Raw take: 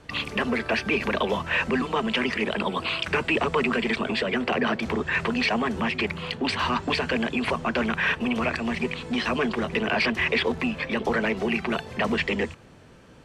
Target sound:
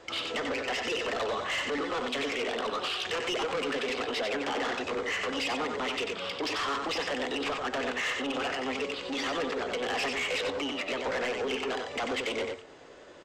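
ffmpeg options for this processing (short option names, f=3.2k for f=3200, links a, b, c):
-filter_complex "[0:a]lowshelf=f=240:t=q:w=1.5:g=-12,asplit=2[a][b];[b]acompressor=threshold=-34dB:ratio=10,volume=-2.5dB[c];[a][c]amix=inputs=2:normalize=0,flanger=delay=8.7:depth=2.1:regen=-87:speed=0.24:shape=triangular,volume=27dB,asoftclip=hard,volume=-27dB,aresample=16000,aresample=44100,asetrate=49501,aresample=44100,atempo=0.890899,asplit=2[d][e];[e]aecho=0:1:92:0.562[f];[d][f]amix=inputs=2:normalize=0,asoftclip=type=tanh:threshold=-24dB"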